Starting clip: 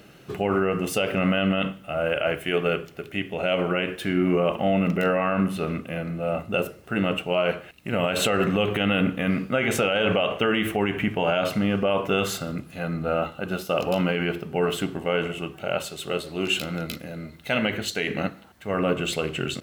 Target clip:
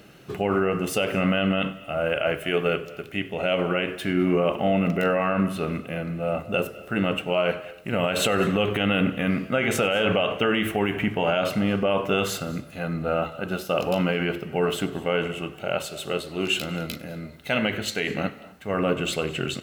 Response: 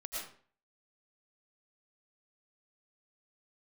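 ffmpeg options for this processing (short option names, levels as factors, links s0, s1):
-filter_complex "[0:a]asplit=2[s0][s1];[1:a]atrim=start_sample=2205,adelay=96[s2];[s1][s2]afir=irnorm=-1:irlink=0,volume=0.133[s3];[s0][s3]amix=inputs=2:normalize=0"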